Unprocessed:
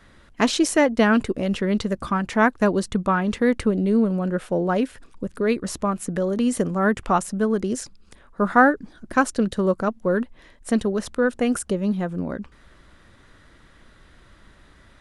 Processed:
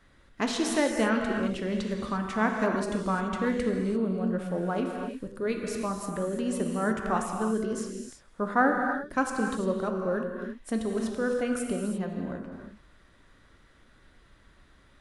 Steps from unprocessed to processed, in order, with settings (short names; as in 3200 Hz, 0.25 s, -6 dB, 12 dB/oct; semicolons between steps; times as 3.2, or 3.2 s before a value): non-linear reverb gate 0.37 s flat, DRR 1.5 dB; gain -9 dB